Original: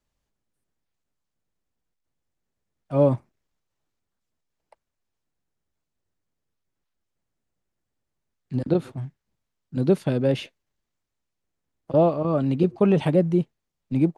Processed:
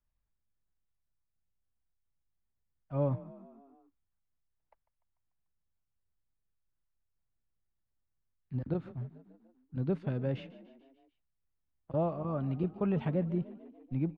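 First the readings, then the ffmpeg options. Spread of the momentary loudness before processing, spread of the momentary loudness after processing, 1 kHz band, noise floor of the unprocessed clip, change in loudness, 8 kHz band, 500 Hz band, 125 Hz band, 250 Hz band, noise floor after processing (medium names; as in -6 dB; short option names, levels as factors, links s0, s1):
14 LU, 13 LU, -11.5 dB, -82 dBFS, -12.0 dB, no reading, -13.5 dB, -8.5 dB, -11.5 dB, -82 dBFS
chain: -filter_complex "[0:a]lowpass=1400,equalizer=f=410:w=0.33:g=-14.5,asplit=6[s0][s1][s2][s3][s4][s5];[s1]adelay=147,afreqshift=33,volume=0.126[s6];[s2]adelay=294,afreqshift=66,volume=0.0759[s7];[s3]adelay=441,afreqshift=99,volume=0.0452[s8];[s4]adelay=588,afreqshift=132,volume=0.0272[s9];[s5]adelay=735,afreqshift=165,volume=0.0164[s10];[s0][s6][s7][s8][s9][s10]amix=inputs=6:normalize=0"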